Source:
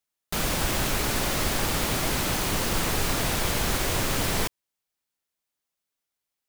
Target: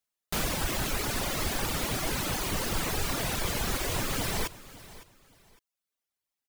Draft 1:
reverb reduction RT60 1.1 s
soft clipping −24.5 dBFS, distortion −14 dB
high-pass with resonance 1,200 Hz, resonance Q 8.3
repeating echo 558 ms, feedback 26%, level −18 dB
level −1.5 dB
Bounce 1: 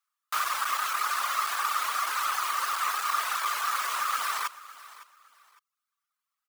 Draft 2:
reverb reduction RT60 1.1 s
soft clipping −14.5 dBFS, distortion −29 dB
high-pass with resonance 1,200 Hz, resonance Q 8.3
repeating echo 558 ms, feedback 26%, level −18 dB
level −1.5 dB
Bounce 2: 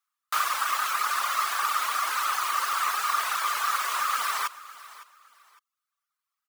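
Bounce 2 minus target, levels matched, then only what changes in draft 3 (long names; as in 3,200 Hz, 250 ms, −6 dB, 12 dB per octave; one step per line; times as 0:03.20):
1,000 Hz band +7.5 dB
remove: high-pass with resonance 1,200 Hz, resonance Q 8.3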